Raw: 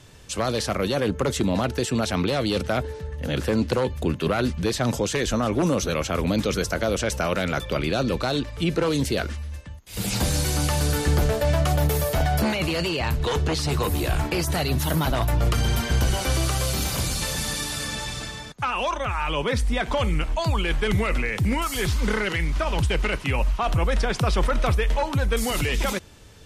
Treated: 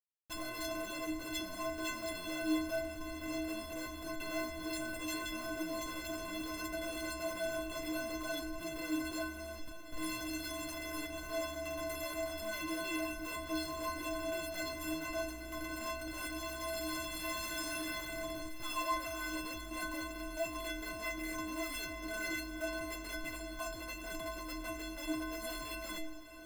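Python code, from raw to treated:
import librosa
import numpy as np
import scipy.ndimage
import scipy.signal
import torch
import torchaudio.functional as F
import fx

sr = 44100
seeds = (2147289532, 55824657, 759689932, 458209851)

y = fx.peak_eq(x, sr, hz=5800.0, db=-10.0, octaves=0.41)
y = fx.schmitt(y, sr, flips_db=-32.0)
y = fx.stiff_resonator(y, sr, f0_hz=310.0, decay_s=0.68, stiffness=0.03)
y = fx.echo_diffused(y, sr, ms=1158, feedback_pct=64, wet_db=-13.0)
y = F.gain(torch.from_numpy(y), 4.0).numpy()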